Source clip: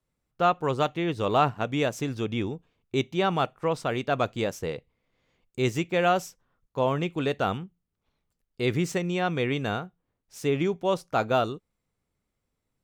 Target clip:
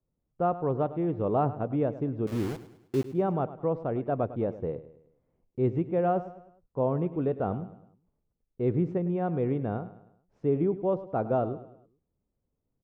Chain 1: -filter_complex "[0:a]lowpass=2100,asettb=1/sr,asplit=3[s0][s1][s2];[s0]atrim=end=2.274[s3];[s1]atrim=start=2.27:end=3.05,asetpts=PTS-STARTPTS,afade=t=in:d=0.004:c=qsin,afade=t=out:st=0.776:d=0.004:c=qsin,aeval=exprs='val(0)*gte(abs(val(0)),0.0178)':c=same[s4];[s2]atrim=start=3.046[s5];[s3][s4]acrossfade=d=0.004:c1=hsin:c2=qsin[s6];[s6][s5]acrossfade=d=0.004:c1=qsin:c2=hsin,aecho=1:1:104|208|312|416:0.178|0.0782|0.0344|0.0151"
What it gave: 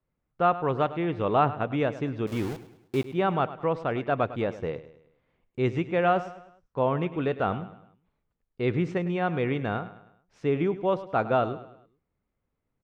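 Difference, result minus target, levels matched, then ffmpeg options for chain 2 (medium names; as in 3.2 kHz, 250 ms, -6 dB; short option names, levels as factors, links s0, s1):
2 kHz band +12.5 dB
-filter_complex "[0:a]lowpass=660,asettb=1/sr,asplit=3[s0][s1][s2];[s0]atrim=end=2.274[s3];[s1]atrim=start=2.27:end=3.05,asetpts=PTS-STARTPTS,afade=t=in:d=0.004:c=qsin,afade=t=out:st=0.776:d=0.004:c=qsin,aeval=exprs='val(0)*gte(abs(val(0)),0.0178)':c=same[s4];[s2]atrim=start=3.046[s5];[s3][s4]acrossfade=d=0.004:c1=hsin:c2=qsin[s6];[s6][s5]acrossfade=d=0.004:c1=qsin:c2=hsin,aecho=1:1:104|208|312|416:0.178|0.0782|0.0344|0.0151"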